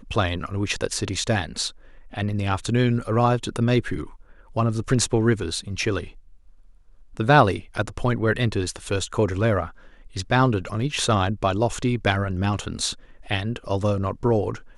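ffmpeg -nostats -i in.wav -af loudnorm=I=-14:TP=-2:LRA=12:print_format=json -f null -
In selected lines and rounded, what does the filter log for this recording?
"input_i" : "-23.8",
"input_tp" : "-3.2",
"input_lra" : "1.9",
"input_thresh" : "-34.3",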